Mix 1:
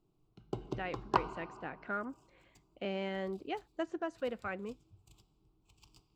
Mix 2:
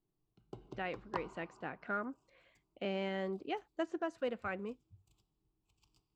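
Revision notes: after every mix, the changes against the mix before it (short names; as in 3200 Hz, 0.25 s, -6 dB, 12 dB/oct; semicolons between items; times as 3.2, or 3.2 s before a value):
background -10.5 dB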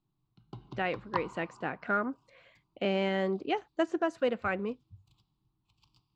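speech +8.0 dB; background: add graphic EQ 125/250/500/1000/4000/8000 Hz +9/+5/-10/+10/+11/-7 dB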